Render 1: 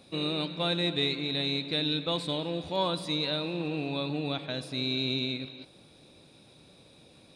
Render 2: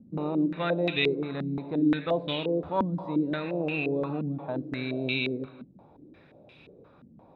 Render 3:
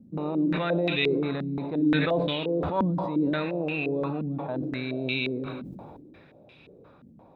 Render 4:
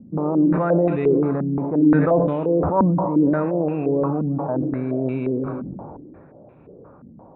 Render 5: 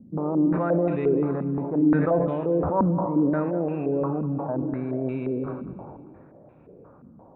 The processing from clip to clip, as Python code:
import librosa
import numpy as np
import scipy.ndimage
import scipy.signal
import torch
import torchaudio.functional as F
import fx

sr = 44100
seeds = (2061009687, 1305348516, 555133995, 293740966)

y1 = fx.filter_held_lowpass(x, sr, hz=5.7, low_hz=220.0, high_hz=2600.0)
y2 = fx.sustainer(y1, sr, db_per_s=27.0)
y3 = scipy.signal.sosfilt(scipy.signal.butter(4, 1300.0, 'lowpass', fs=sr, output='sos'), y2)
y3 = F.gain(torch.from_numpy(y3), 8.0).numpy()
y4 = fx.echo_feedback(y3, sr, ms=195, feedback_pct=52, wet_db=-15.5)
y4 = F.gain(torch.from_numpy(y4), -4.5).numpy()